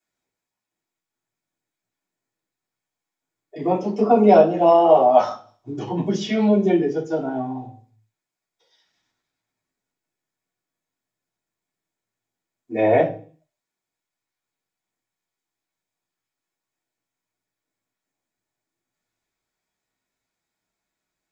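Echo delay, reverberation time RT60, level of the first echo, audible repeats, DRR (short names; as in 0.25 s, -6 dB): none, 0.45 s, none, none, -8.0 dB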